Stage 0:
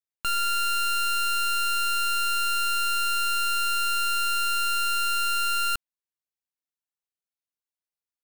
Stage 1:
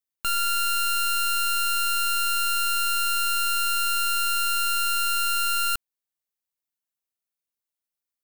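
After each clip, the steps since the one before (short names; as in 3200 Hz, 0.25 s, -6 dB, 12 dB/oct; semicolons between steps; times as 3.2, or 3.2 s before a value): high shelf 9000 Hz +7.5 dB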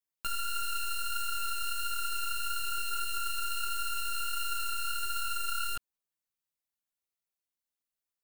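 chorus voices 6, 1.4 Hz, delay 16 ms, depth 3.2 ms; limiter -25.5 dBFS, peak gain reduction 9.5 dB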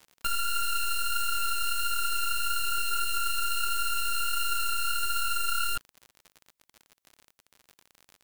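crackle 55/s -42 dBFS; gain +5 dB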